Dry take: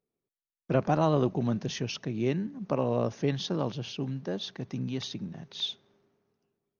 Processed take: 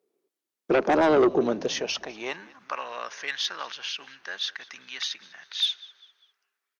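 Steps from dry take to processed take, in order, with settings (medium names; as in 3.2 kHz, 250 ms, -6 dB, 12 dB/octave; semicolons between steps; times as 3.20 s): high-pass sweep 370 Hz -> 1.6 kHz, 1.38–2.80 s; frequency-shifting echo 199 ms, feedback 38%, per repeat -60 Hz, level -22 dB; Chebyshev shaper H 5 -9 dB, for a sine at -10 dBFS; trim -2 dB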